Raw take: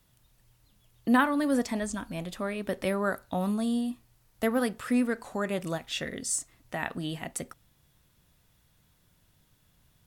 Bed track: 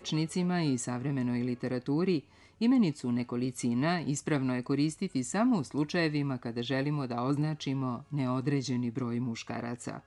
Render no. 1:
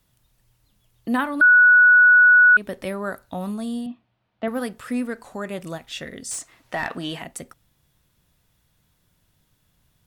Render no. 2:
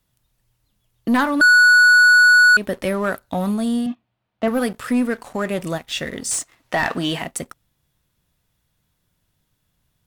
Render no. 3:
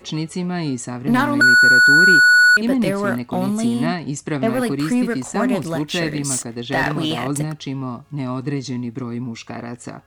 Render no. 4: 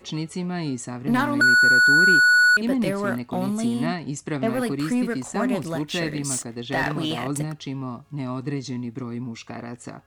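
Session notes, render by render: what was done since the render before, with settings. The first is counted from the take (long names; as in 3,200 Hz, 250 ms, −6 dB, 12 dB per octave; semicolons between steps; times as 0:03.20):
0:01.41–0:02.57: beep over 1,470 Hz −9 dBFS; 0:03.86–0:04.48: loudspeaker in its box 120–3,400 Hz, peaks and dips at 140 Hz −7 dB, 200 Hz +4 dB, 420 Hz −4 dB, 670 Hz +5 dB, 1,900 Hz −3 dB; 0:06.31–0:07.23: mid-hump overdrive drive 18 dB, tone 3,000 Hz, clips at −14 dBFS
leveller curve on the samples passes 2
mix in bed track +6 dB
level −4.5 dB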